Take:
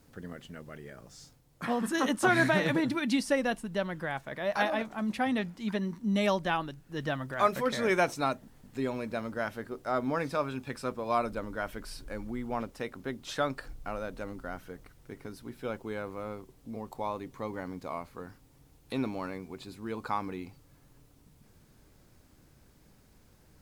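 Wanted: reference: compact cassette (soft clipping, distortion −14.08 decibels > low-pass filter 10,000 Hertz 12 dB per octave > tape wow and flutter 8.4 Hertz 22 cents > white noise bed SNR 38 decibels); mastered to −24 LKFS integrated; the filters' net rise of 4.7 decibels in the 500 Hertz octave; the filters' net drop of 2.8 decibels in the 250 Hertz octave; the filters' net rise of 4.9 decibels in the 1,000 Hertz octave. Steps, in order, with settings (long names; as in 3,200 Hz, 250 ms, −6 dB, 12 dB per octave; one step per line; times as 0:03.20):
parametric band 250 Hz −5.5 dB
parametric band 500 Hz +5.5 dB
parametric band 1,000 Hz +5 dB
soft clipping −18 dBFS
low-pass filter 10,000 Hz 12 dB per octave
tape wow and flutter 8.4 Hz 22 cents
white noise bed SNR 38 dB
level +7.5 dB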